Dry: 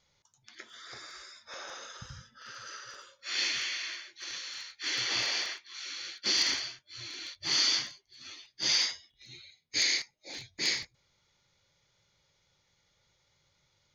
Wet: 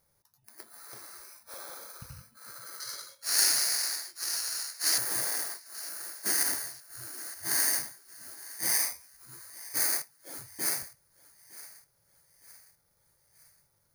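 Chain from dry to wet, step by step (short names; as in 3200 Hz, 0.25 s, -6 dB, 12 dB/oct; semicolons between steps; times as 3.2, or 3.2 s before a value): FFT order left unsorted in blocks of 16 samples; 2.8–4.98 bell 4700 Hz +14 dB 2.3 oct; thinning echo 0.912 s, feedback 46%, high-pass 490 Hz, level -18 dB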